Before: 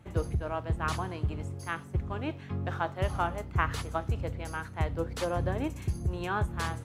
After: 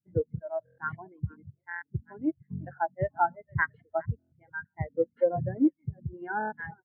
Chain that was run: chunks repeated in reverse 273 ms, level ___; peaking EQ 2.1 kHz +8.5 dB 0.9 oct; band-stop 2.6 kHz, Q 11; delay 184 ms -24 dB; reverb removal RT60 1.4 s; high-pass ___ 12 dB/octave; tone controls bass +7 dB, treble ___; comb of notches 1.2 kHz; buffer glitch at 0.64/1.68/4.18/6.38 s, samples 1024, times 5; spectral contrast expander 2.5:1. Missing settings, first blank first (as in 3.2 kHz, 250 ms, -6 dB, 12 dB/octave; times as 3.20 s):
-9 dB, 150 Hz, -14 dB